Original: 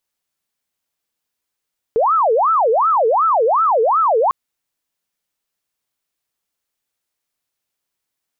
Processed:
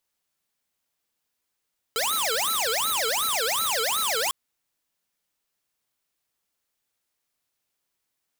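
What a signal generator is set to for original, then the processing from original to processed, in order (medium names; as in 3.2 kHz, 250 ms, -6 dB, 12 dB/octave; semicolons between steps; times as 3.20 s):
siren wail 437–1330 Hz 2.7 per s sine -11.5 dBFS 2.35 s
integer overflow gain 20.5 dB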